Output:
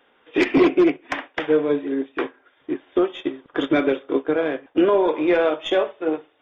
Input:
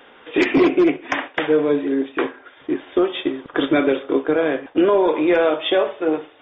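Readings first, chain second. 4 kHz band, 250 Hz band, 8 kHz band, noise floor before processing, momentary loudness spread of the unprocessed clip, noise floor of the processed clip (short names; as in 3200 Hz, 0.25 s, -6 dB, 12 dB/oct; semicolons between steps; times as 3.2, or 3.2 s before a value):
-4.5 dB, -2.0 dB, n/a, -48 dBFS, 9 LU, -61 dBFS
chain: tracing distortion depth 0.023 ms; upward expander 1.5:1, over -37 dBFS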